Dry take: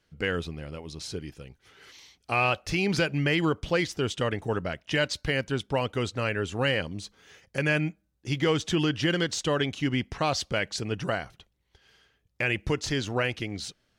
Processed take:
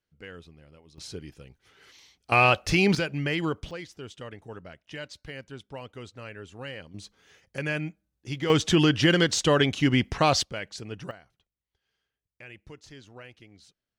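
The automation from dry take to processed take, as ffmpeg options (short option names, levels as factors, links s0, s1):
-af "asetnsamples=n=441:p=0,asendcmd='0.98 volume volume -3.5dB;2.32 volume volume 5dB;2.95 volume volume -3dB;3.71 volume volume -13dB;6.94 volume volume -4.5dB;8.5 volume volume 5dB;10.43 volume volume -7dB;11.11 volume volume -19dB',volume=0.178"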